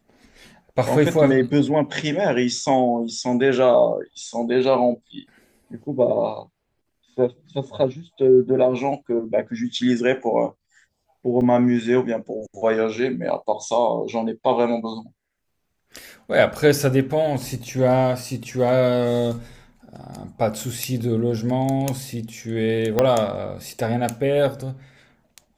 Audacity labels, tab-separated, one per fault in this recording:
11.410000	11.410000	drop-out 3 ms
22.990000	22.990000	click −5 dBFS

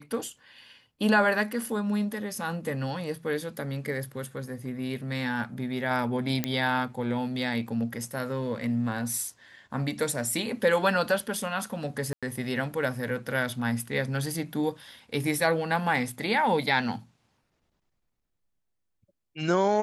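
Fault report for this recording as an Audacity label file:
6.440000	6.440000	click −11 dBFS
12.130000	12.230000	drop-out 96 ms

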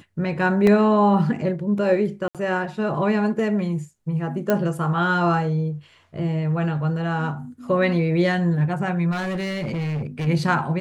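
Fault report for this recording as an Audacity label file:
0.670000	0.670000	drop-out 2.5 ms
2.280000	2.350000	drop-out 67 ms
4.500000	4.500000	click −8 dBFS
9.110000	10.280000	clipping −23 dBFS

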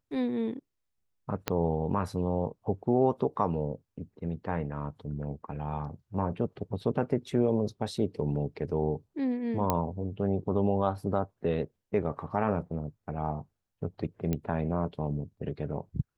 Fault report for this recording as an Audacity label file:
1.480000	1.480000	click −12 dBFS
9.700000	9.700000	click −11 dBFS
14.330000	14.330000	click −17 dBFS

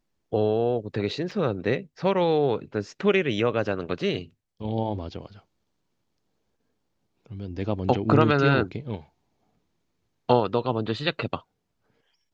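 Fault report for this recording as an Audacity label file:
1.310000	1.310000	drop-out 4.1 ms

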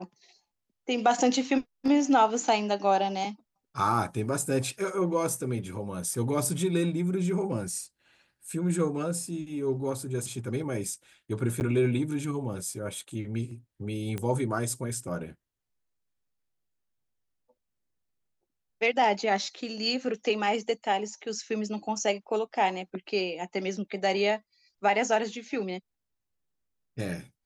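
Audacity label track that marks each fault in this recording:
11.600000	11.610000	drop-out 9.5 ms
14.180000	14.180000	click −19 dBFS

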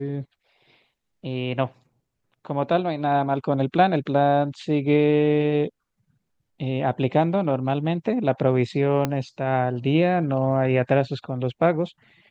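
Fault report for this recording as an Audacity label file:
9.050000	9.050000	click −9 dBFS

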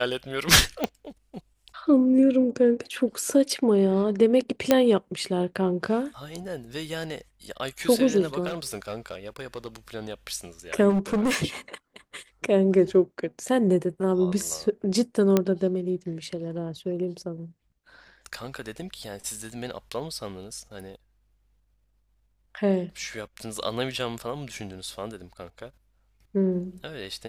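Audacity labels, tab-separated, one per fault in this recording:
0.840000	0.840000	click −11 dBFS
4.710000	4.710000	click −4 dBFS
8.460000	9.680000	clipping −27 dBFS
10.890000	11.450000	clipping −20 dBFS
15.370000	15.370000	click −7 dBFS

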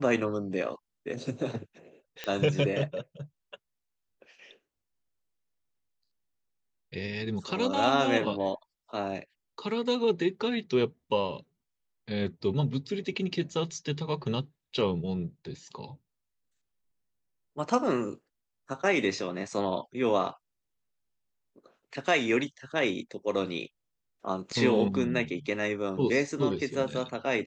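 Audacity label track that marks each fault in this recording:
2.240000	2.240000	click −18 dBFS

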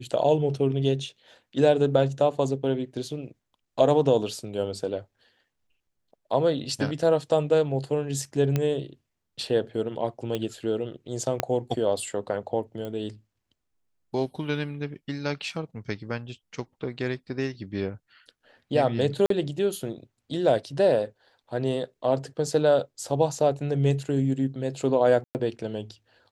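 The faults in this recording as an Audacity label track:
8.560000	8.560000	click −12 dBFS
10.350000	10.350000	click −16 dBFS
11.400000	11.400000	click −8 dBFS
12.850000	12.850000	click −23 dBFS
19.260000	19.300000	drop-out 43 ms
25.240000	25.350000	drop-out 109 ms

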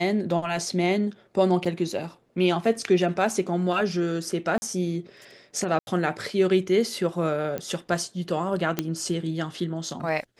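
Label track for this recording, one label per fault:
1.650000	1.660000	drop-out 5.7 ms
4.580000	4.620000	drop-out 40 ms
5.790000	5.870000	drop-out 81 ms
7.580000	7.580000	click −16 dBFS
8.790000	8.790000	click −9 dBFS

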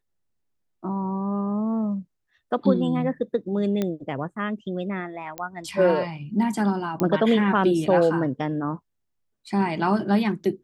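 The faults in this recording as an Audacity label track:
3.820000	3.820000	click −13 dBFS
5.380000	5.380000	click −15 dBFS
7.000000	7.000000	click −12 dBFS

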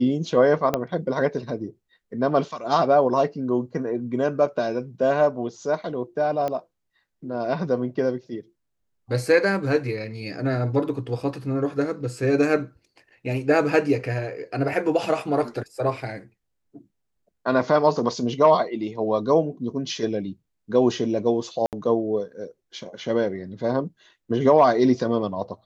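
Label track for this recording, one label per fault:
0.740000	0.740000	click −8 dBFS
6.480000	6.480000	click −16 dBFS
21.660000	21.730000	drop-out 68 ms

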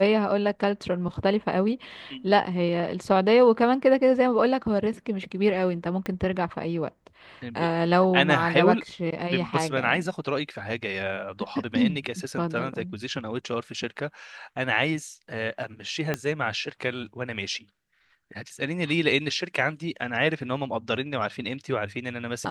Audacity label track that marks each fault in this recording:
6.060000	6.060000	click −17 dBFS
16.140000	16.140000	click −12 dBFS

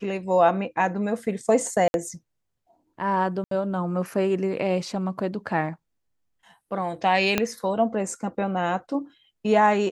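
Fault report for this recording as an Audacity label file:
1.880000	1.940000	drop-out 61 ms
3.440000	3.510000	drop-out 73 ms
7.380000	7.380000	click −6 dBFS

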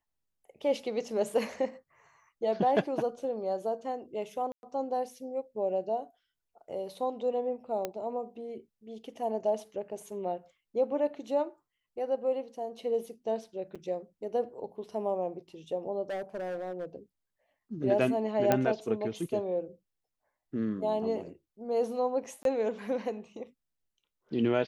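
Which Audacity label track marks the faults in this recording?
4.520000	4.630000	drop-out 111 ms
7.850000	7.850000	click −18 dBFS
13.750000	13.760000	drop-out 5.5 ms
16.090000	16.860000	clipping −32 dBFS
18.520000	18.520000	click −11 dBFS
22.430000	22.450000	drop-out 22 ms

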